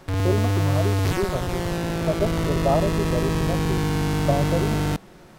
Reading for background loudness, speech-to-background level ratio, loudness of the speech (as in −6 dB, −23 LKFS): −24.0 LKFS, −4.0 dB, −28.0 LKFS